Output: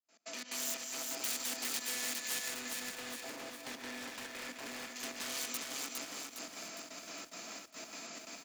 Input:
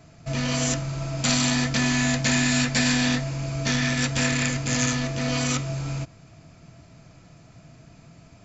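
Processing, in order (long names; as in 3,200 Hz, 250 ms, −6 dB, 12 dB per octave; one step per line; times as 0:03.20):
fade in at the beginning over 1.31 s
gate pattern ".x.xx.xxx..x.xxx" 176 BPM −24 dB
downward compressor 5 to 1, threshold −30 dBFS, peak gain reduction 11 dB
asymmetric clip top −36.5 dBFS
Butterworth high-pass 210 Hz 48 dB per octave
single-tap delay 205 ms −20 dB
wave folding −33.5 dBFS
0:02.48–0:04.96: low-pass filter 1,300 Hz 6 dB per octave
brickwall limiter −44.5 dBFS, peak gain reduction 11 dB
spectral tilt +3 dB per octave
feedback echo at a low word length 409 ms, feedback 55%, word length 11 bits, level −3 dB
level +7 dB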